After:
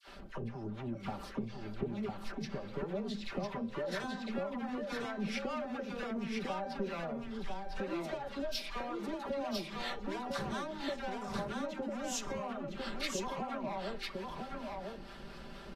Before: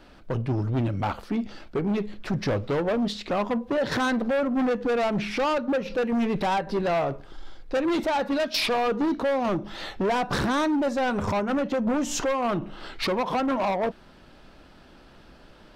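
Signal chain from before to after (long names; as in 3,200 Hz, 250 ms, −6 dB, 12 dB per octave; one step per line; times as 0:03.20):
comb filter 5.1 ms, depth 63%
hum removal 260.6 Hz, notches 31
downward compressor 16 to 1, threshold −36 dBFS, peak gain reduction 18 dB
all-pass dispersion lows, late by 77 ms, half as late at 1,100 Hz
two-band tremolo in antiphase 4.4 Hz, depth 70%, crossover 650 Hz
single-tap delay 1,002 ms −3.5 dB
level +2.5 dB
AAC 48 kbit/s 32,000 Hz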